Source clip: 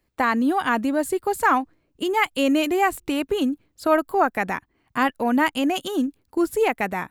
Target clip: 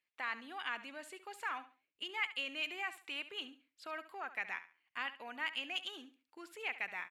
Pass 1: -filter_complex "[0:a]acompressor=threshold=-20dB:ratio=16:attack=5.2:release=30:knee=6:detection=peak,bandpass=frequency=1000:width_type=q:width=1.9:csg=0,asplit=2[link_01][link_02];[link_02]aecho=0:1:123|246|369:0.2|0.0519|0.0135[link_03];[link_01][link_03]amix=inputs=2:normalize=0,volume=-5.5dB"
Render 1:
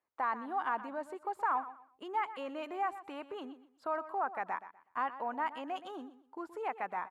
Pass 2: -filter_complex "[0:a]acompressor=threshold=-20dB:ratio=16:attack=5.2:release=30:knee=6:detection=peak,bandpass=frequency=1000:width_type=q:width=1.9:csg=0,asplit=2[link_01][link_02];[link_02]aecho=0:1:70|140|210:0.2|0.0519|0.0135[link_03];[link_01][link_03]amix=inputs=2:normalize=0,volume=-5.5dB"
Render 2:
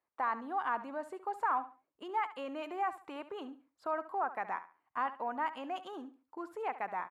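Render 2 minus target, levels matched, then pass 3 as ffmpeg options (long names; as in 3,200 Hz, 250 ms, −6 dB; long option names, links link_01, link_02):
1,000 Hz band +8.5 dB
-filter_complex "[0:a]acompressor=threshold=-20dB:ratio=16:attack=5.2:release=30:knee=6:detection=peak,bandpass=frequency=2600:width_type=q:width=1.9:csg=0,asplit=2[link_01][link_02];[link_02]aecho=0:1:70|140|210:0.2|0.0519|0.0135[link_03];[link_01][link_03]amix=inputs=2:normalize=0,volume=-5.5dB"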